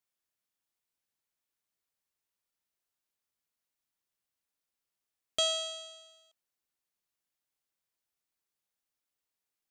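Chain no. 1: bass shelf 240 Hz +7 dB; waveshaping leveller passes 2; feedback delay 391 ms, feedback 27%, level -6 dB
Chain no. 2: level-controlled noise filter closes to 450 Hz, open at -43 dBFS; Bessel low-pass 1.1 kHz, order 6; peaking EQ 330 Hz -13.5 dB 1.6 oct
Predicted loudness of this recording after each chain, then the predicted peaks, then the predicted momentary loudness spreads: -26.5 LUFS, -47.0 LUFS; -15.0 dBFS, -32.0 dBFS; 19 LU, 15 LU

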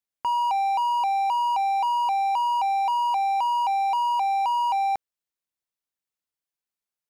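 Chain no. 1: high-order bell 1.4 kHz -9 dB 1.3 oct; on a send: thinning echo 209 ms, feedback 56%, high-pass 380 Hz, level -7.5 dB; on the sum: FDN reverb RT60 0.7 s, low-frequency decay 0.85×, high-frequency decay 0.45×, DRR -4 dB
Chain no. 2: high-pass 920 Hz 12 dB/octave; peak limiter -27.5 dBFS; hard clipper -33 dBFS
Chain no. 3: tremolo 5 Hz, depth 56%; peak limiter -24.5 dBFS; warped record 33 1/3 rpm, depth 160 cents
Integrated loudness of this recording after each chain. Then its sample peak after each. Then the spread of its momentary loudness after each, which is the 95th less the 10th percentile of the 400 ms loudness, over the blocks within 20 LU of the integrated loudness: -29.0 LUFS, -34.0 LUFS, -30.0 LUFS; -15.5 dBFS, -33.0 dBFS, -24.5 dBFS; 9 LU, 1 LU, 1 LU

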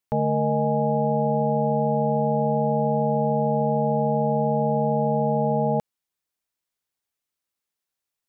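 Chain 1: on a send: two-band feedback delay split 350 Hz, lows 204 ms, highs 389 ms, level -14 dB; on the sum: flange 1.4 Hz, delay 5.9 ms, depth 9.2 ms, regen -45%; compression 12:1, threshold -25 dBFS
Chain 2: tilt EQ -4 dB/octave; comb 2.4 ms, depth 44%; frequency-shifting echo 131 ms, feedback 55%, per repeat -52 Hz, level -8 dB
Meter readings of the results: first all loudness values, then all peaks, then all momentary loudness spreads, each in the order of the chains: -30.0 LUFS, -16.0 LUFS; -18.0 dBFS, -4.0 dBFS; 9 LU, 1 LU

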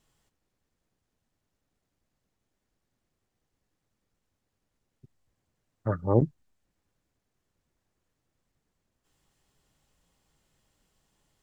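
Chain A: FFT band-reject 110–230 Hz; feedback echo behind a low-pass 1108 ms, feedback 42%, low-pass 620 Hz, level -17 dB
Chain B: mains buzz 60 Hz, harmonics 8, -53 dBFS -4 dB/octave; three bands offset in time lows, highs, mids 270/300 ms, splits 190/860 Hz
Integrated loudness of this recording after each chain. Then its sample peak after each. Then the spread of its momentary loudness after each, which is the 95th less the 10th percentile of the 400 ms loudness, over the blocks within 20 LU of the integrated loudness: -31.5 LUFS, -30.5 LUFS; -11.0 dBFS, -12.5 dBFS; 18 LU, 12 LU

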